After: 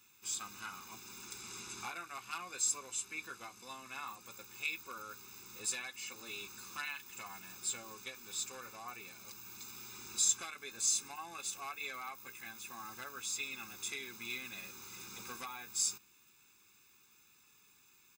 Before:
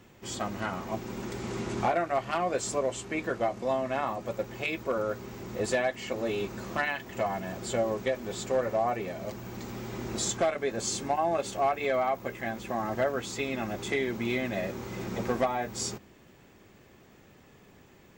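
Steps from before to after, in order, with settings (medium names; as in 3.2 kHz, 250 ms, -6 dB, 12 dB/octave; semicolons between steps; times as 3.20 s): pre-emphasis filter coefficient 0.97; comb 0.8 ms, depth 85%; in parallel at -11 dB: saturation -27.5 dBFS, distortion -14 dB; on the sum: trim -1.5 dB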